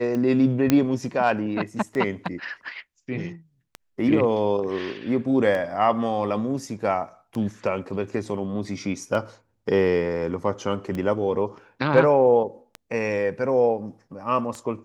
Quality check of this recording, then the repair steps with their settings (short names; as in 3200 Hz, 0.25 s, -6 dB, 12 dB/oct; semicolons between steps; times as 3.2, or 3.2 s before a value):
tick 33 1/3 rpm -18 dBFS
0.7 pop -5 dBFS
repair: de-click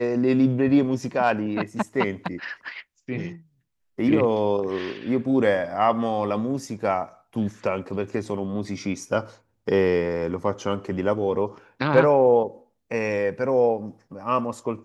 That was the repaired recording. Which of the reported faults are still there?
none